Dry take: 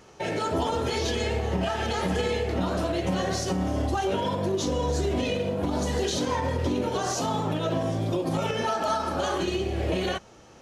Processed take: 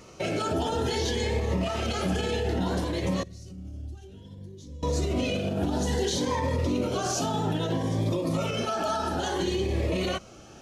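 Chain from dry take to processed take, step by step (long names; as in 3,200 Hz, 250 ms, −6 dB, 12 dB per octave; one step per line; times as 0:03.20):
brickwall limiter −22.5 dBFS, peak gain reduction 6.5 dB
0:03.23–0:04.83: guitar amp tone stack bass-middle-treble 10-0-1
phaser whose notches keep moving one way rising 0.6 Hz
level +4.5 dB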